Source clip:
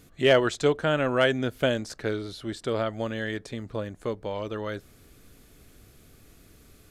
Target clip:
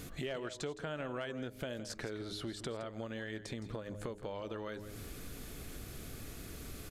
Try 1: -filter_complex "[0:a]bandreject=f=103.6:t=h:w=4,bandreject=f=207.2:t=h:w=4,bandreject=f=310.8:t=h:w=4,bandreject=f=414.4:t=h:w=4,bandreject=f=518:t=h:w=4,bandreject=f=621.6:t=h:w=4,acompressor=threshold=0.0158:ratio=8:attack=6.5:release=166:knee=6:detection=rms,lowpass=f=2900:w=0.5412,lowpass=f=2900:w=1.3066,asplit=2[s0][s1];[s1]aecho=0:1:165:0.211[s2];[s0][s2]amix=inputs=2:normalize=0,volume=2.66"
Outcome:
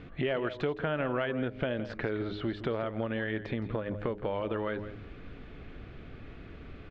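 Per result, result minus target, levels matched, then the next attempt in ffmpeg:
compression: peak gain reduction -9 dB; 4 kHz band -8.0 dB
-filter_complex "[0:a]bandreject=f=103.6:t=h:w=4,bandreject=f=207.2:t=h:w=4,bandreject=f=310.8:t=h:w=4,bandreject=f=414.4:t=h:w=4,bandreject=f=518:t=h:w=4,bandreject=f=621.6:t=h:w=4,acompressor=threshold=0.00473:ratio=8:attack=6.5:release=166:knee=6:detection=rms,lowpass=f=2900:w=0.5412,lowpass=f=2900:w=1.3066,asplit=2[s0][s1];[s1]aecho=0:1:165:0.211[s2];[s0][s2]amix=inputs=2:normalize=0,volume=2.66"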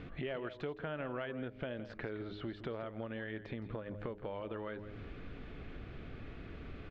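4 kHz band -6.5 dB
-filter_complex "[0:a]bandreject=f=103.6:t=h:w=4,bandreject=f=207.2:t=h:w=4,bandreject=f=310.8:t=h:w=4,bandreject=f=414.4:t=h:w=4,bandreject=f=518:t=h:w=4,bandreject=f=621.6:t=h:w=4,acompressor=threshold=0.00473:ratio=8:attack=6.5:release=166:knee=6:detection=rms,asplit=2[s0][s1];[s1]aecho=0:1:165:0.211[s2];[s0][s2]amix=inputs=2:normalize=0,volume=2.66"

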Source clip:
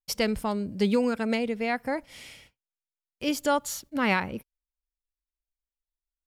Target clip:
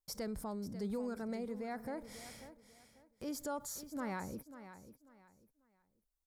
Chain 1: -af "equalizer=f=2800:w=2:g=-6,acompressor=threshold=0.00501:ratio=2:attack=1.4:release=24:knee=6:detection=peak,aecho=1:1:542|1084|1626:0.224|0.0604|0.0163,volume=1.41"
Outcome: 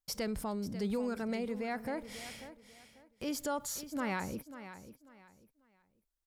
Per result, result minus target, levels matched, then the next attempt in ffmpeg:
compression: peak gain reduction -4.5 dB; 2 kHz band +3.5 dB
-af "equalizer=f=2800:w=2:g=-6,acompressor=threshold=0.00178:ratio=2:attack=1.4:release=24:knee=6:detection=peak,aecho=1:1:542|1084|1626:0.224|0.0604|0.0163,volume=1.41"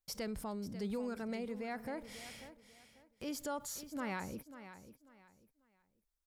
2 kHz band +3.5 dB
-af "equalizer=f=2800:w=2:g=-18,acompressor=threshold=0.00178:ratio=2:attack=1.4:release=24:knee=6:detection=peak,aecho=1:1:542|1084|1626:0.224|0.0604|0.0163,volume=1.41"

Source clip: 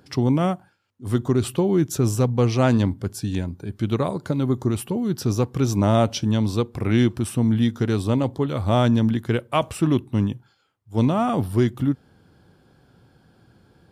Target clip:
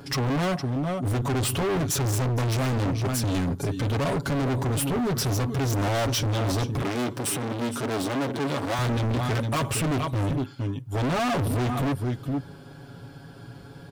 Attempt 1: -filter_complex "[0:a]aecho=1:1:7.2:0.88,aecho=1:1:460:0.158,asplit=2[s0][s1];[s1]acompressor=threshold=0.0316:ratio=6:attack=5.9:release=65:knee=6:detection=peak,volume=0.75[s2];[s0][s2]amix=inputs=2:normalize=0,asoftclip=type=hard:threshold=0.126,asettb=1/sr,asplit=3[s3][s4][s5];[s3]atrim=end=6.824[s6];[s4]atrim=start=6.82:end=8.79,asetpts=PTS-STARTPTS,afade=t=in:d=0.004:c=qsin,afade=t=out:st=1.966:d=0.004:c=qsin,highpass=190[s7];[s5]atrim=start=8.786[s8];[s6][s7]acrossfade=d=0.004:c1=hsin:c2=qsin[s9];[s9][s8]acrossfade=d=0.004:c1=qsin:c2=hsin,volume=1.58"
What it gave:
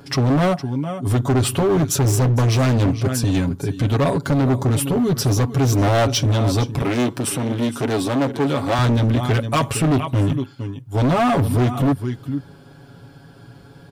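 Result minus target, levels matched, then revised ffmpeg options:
hard clipper: distortion -4 dB
-filter_complex "[0:a]aecho=1:1:7.2:0.88,aecho=1:1:460:0.158,asplit=2[s0][s1];[s1]acompressor=threshold=0.0316:ratio=6:attack=5.9:release=65:knee=6:detection=peak,volume=0.75[s2];[s0][s2]amix=inputs=2:normalize=0,asoftclip=type=hard:threshold=0.0422,asettb=1/sr,asplit=3[s3][s4][s5];[s3]atrim=end=6.824[s6];[s4]atrim=start=6.82:end=8.79,asetpts=PTS-STARTPTS,afade=t=in:d=0.004:c=qsin,afade=t=out:st=1.966:d=0.004:c=qsin,highpass=190[s7];[s5]atrim=start=8.786[s8];[s6][s7]acrossfade=d=0.004:c1=hsin:c2=qsin[s9];[s9][s8]acrossfade=d=0.004:c1=qsin:c2=hsin,volume=1.58"

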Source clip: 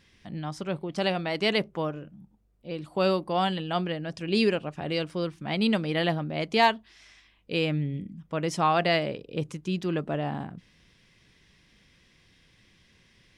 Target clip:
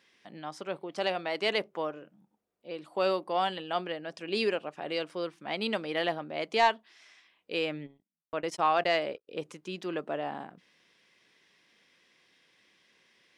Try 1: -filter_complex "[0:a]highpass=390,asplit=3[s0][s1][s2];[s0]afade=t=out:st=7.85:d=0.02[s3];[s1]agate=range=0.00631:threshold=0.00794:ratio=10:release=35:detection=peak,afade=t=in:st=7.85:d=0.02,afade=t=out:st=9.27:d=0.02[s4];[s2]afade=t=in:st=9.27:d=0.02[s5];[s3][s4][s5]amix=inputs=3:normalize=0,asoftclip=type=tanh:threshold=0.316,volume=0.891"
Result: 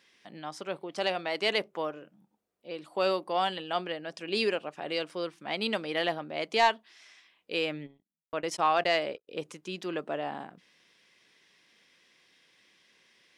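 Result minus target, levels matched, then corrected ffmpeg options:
8 kHz band +3.5 dB
-filter_complex "[0:a]highpass=390,highshelf=f=2900:g=-4,asplit=3[s0][s1][s2];[s0]afade=t=out:st=7.85:d=0.02[s3];[s1]agate=range=0.00631:threshold=0.00794:ratio=10:release=35:detection=peak,afade=t=in:st=7.85:d=0.02,afade=t=out:st=9.27:d=0.02[s4];[s2]afade=t=in:st=9.27:d=0.02[s5];[s3][s4][s5]amix=inputs=3:normalize=0,asoftclip=type=tanh:threshold=0.316,volume=0.891"

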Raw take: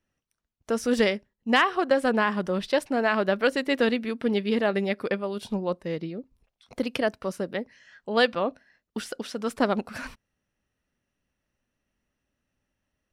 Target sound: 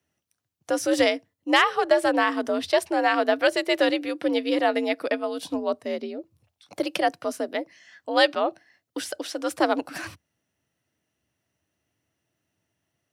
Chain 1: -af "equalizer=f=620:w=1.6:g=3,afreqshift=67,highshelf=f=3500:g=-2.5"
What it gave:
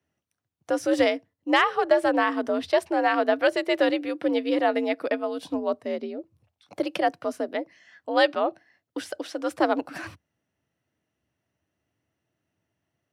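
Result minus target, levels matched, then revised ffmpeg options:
8 kHz band -7.0 dB
-af "equalizer=f=620:w=1.6:g=3,afreqshift=67,highshelf=f=3500:g=7"

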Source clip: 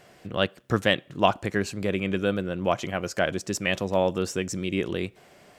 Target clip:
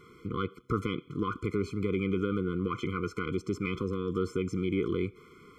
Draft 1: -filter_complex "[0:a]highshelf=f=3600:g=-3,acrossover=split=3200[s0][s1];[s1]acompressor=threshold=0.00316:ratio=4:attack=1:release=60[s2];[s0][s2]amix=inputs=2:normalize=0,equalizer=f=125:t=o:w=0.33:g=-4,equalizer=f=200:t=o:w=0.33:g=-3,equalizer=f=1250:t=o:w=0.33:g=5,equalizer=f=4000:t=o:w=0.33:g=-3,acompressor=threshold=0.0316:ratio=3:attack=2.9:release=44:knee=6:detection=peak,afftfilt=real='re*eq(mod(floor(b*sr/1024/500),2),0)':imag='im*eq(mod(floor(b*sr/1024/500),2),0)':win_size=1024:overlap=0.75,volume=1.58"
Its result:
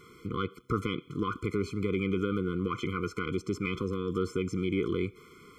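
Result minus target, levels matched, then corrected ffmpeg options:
8 kHz band +2.5 dB
-filter_complex "[0:a]highshelf=f=3600:g=-11,acrossover=split=3200[s0][s1];[s1]acompressor=threshold=0.00316:ratio=4:attack=1:release=60[s2];[s0][s2]amix=inputs=2:normalize=0,equalizer=f=125:t=o:w=0.33:g=-4,equalizer=f=200:t=o:w=0.33:g=-3,equalizer=f=1250:t=o:w=0.33:g=5,equalizer=f=4000:t=o:w=0.33:g=-3,acompressor=threshold=0.0316:ratio=3:attack=2.9:release=44:knee=6:detection=peak,afftfilt=real='re*eq(mod(floor(b*sr/1024/500),2),0)':imag='im*eq(mod(floor(b*sr/1024/500),2),0)':win_size=1024:overlap=0.75,volume=1.58"

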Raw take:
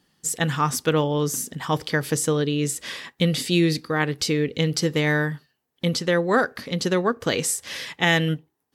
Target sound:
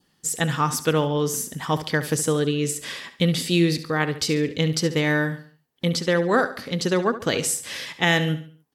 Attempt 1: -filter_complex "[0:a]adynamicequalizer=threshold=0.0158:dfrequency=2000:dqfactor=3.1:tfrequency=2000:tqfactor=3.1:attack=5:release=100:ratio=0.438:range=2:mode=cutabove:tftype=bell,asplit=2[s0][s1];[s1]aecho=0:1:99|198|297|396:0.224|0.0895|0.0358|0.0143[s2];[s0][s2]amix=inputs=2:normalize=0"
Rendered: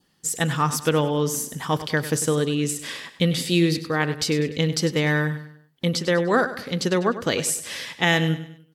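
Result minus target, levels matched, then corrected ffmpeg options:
echo 29 ms late
-filter_complex "[0:a]adynamicequalizer=threshold=0.0158:dfrequency=2000:dqfactor=3.1:tfrequency=2000:tqfactor=3.1:attack=5:release=100:ratio=0.438:range=2:mode=cutabove:tftype=bell,asplit=2[s0][s1];[s1]aecho=0:1:70|140|210|280:0.224|0.0895|0.0358|0.0143[s2];[s0][s2]amix=inputs=2:normalize=0"

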